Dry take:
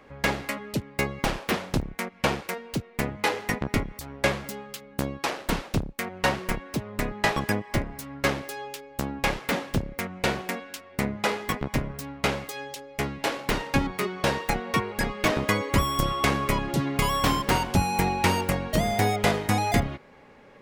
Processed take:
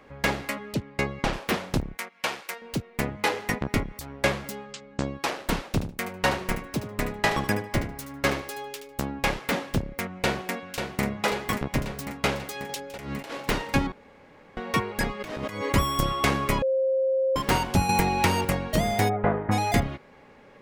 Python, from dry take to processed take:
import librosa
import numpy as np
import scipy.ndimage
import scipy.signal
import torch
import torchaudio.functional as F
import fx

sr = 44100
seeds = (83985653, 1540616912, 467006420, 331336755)

y = fx.air_absorb(x, sr, metres=51.0, at=(0.74, 1.33))
y = fx.highpass(y, sr, hz=1200.0, slope=6, at=(1.97, 2.62))
y = fx.cheby1_lowpass(y, sr, hz=7900.0, order=5, at=(4.65, 5.15))
y = fx.echo_feedback(y, sr, ms=75, feedback_pct=17, wet_db=-11, at=(5.79, 9.02), fade=0.02)
y = fx.echo_throw(y, sr, start_s=10.08, length_s=0.95, ms=540, feedback_pct=65, wet_db=-6.5)
y = fx.over_compress(y, sr, threshold_db=-35.0, ratio=-1.0, at=(12.69, 13.35))
y = fx.over_compress(y, sr, threshold_db=-32.0, ratio=-1.0, at=(15.19, 15.72), fade=0.02)
y = fx.band_squash(y, sr, depth_pct=100, at=(17.89, 18.45))
y = fx.lowpass(y, sr, hz=1600.0, slope=24, at=(19.08, 19.51), fade=0.02)
y = fx.edit(y, sr, fx.room_tone_fill(start_s=13.92, length_s=0.65),
    fx.bleep(start_s=16.62, length_s=0.74, hz=530.0, db=-20.5), tone=tone)